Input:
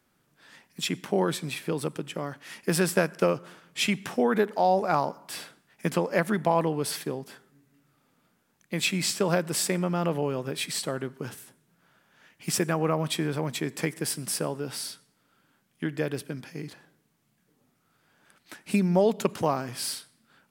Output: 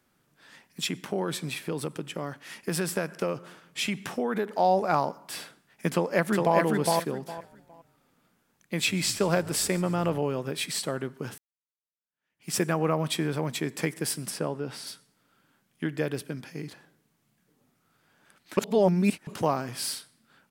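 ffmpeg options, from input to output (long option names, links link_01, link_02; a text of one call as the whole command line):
ffmpeg -i in.wav -filter_complex "[0:a]asettb=1/sr,asplit=3[link_01][link_02][link_03];[link_01]atrim=end=0.864[link_04];[link_02]atrim=start=0.86:end=4.54,asetpts=PTS-STARTPTS,afade=type=in:duration=0.004:curve=qsin,afade=type=out:start_time=3.676:duration=0.004:curve=qsin,acompressor=threshold=-27dB:ratio=2:attack=3.2:release=140:knee=1:detection=peak[link_05];[link_03]atrim=start=4.536[link_06];[link_04][link_05]acrossfade=duration=0.004:curve1=hsin:curve2=qsin[link_07];[link_07][link_06]acrossfade=duration=0.004:curve1=qsin:curve2=hsin,asplit=2[link_08][link_09];[link_09]afade=type=in:start_time=5.9:duration=0.01,afade=type=out:start_time=6.58:duration=0.01,aecho=0:1:410|820|1230:0.794328|0.158866|0.0317731[link_10];[link_08][link_10]amix=inputs=2:normalize=0,asettb=1/sr,asplit=3[link_11][link_12][link_13];[link_11]atrim=end=7.224[link_14];[link_12]atrim=start=7.22:end=10.2,asetpts=PTS-STARTPTS,afade=type=in:duration=0.004:curve=qsin,afade=type=out:start_time=2.976:duration=0.004:curve=qsin,asplit=4[link_15][link_16][link_17][link_18];[link_16]adelay=145,afreqshift=-61,volume=-19dB[link_19];[link_17]adelay=290,afreqshift=-122,volume=-26.7dB[link_20];[link_18]adelay=435,afreqshift=-183,volume=-34.5dB[link_21];[link_15][link_19][link_20][link_21]amix=inputs=4:normalize=0,atrim=end_sample=131418[link_22];[link_13]atrim=start=10.196[link_23];[link_14][link_22]acrossfade=duration=0.004:curve1=hsin:curve2=qsin[link_24];[link_24][link_23]acrossfade=duration=0.004:curve1=qsin:curve2=hsin,asplit=3[link_25][link_26][link_27];[link_25]afade=type=out:start_time=14.29:duration=0.02[link_28];[link_26]lowpass=frequency=3000:poles=1,afade=type=in:start_time=14.29:duration=0.02,afade=type=out:start_time=14.86:duration=0.02[link_29];[link_27]afade=type=in:start_time=14.86:duration=0.02[link_30];[link_28][link_29][link_30]amix=inputs=3:normalize=0,asplit=4[link_31][link_32][link_33][link_34];[link_31]atrim=end=11.38,asetpts=PTS-STARTPTS,afade=type=out:start_time=11.376:duration=0.004:curve=hsin[link_35];[link_32]atrim=start=11.38:end=18.572,asetpts=PTS-STARTPTS,afade=type=in:duration=1.19:curve=exp[link_36];[link_33]atrim=start=18.568:end=19.272,asetpts=PTS-STARTPTS,areverse[link_37];[link_34]atrim=start=19.268[link_38];[link_35][link_36]concat=n=2:v=0:a=1[link_39];[link_39][link_37]acrossfade=duration=0.004:curve1=hsin:curve2=hsin[link_40];[link_40][link_38]acrossfade=duration=0.004:curve1=hsin:curve2=hsin" out.wav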